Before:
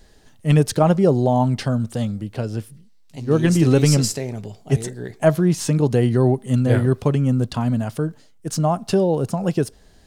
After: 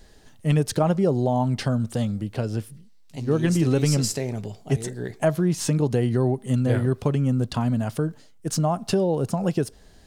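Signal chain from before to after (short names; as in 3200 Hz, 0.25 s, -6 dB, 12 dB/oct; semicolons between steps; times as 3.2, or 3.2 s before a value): compressor 2:1, threshold -21 dBFS, peak gain reduction 7 dB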